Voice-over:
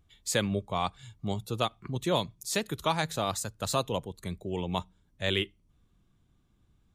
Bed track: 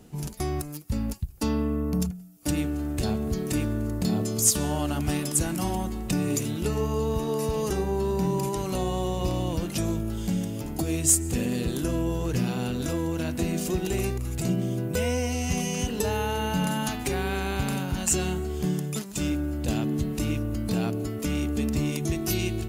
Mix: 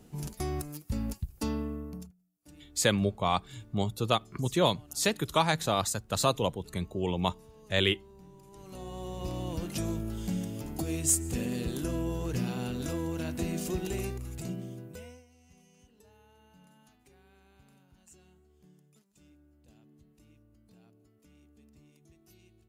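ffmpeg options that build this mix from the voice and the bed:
-filter_complex "[0:a]adelay=2500,volume=1.33[s0];[1:a]volume=7.94,afade=t=out:st=1.35:d=0.78:silence=0.0668344,afade=t=in:st=8.46:d=1.28:silence=0.0749894,afade=t=out:st=13.77:d=1.48:silence=0.0398107[s1];[s0][s1]amix=inputs=2:normalize=0"

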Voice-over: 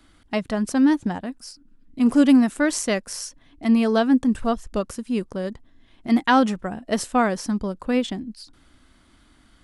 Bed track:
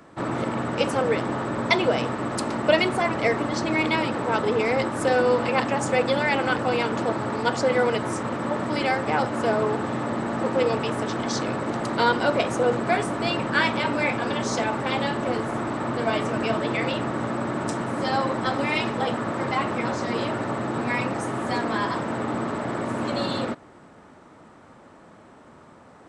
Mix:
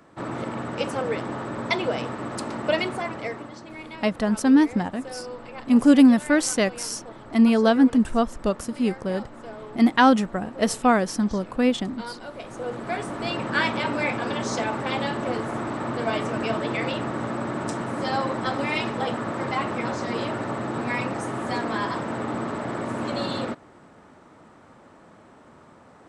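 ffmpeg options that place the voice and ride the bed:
-filter_complex "[0:a]adelay=3700,volume=1.12[s0];[1:a]volume=3.55,afade=t=out:st=2.79:d=0.81:silence=0.237137,afade=t=in:st=12.36:d=1.21:silence=0.177828[s1];[s0][s1]amix=inputs=2:normalize=0"

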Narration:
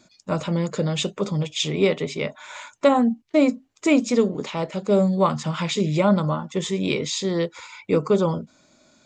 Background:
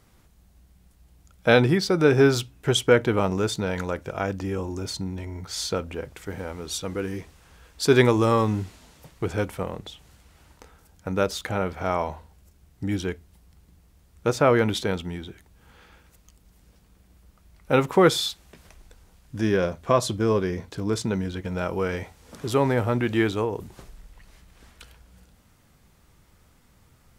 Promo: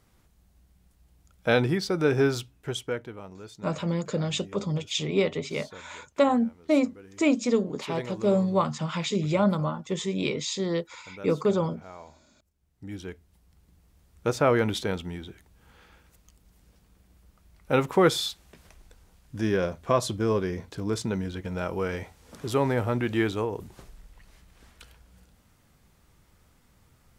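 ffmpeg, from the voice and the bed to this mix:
-filter_complex "[0:a]adelay=3350,volume=0.596[s0];[1:a]volume=3.76,afade=t=out:st=2.18:d=0.97:silence=0.188365,afade=t=in:st=12.53:d=1.47:silence=0.149624[s1];[s0][s1]amix=inputs=2:normalize=0"

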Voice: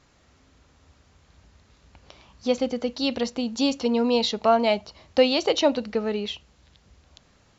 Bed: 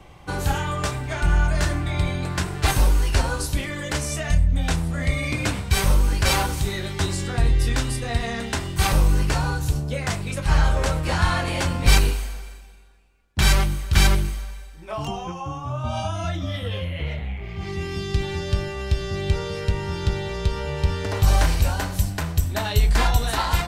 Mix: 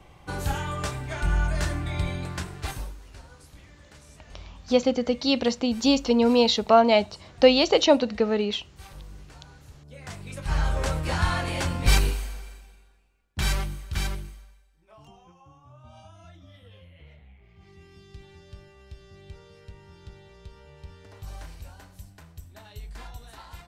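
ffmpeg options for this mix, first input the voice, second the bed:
-filter_complex "[0:a]adelay=2250,volume=1.33[s0];[1:a]volume=7.08,afade=t=out:st=2.13:d=0.84:silence=0.0891251,afade=t=in:st=9.8:d=1.13:silence=0.0794328,afade=t=out:st=12.61:d=2.02:silence=0.11885[s1];[s0][s1]amix=inputs=2:normalize=0"

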